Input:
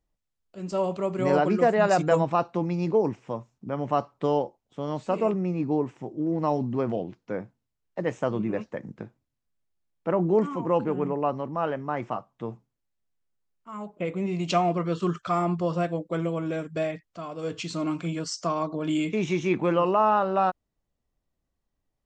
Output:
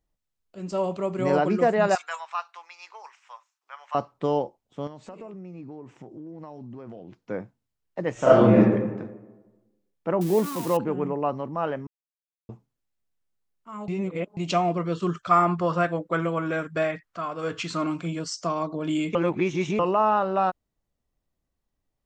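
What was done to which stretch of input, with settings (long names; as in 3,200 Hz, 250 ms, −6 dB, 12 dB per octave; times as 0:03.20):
0:01.95–0:03.95: inverse Chebyshev high-pass filter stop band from 240 Hz, stop band 70 dB
0:04.87–0:07.17: downward compressor, threshold −38 dBFS
0:08.13–0:08.55: thrown reverb, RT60 1.2 s, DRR −11.5 dB
0:10.21–0:10.77: spike at every zero crossing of −24 dBFS
0:11.87–0:12.49: silence
0:13.88–0:14.37: reverse
0:15.31–0:17.87: parametric band 1,400 Hz +11.5 dB 1.3 octaves
0:19.15–0:19.79: reverse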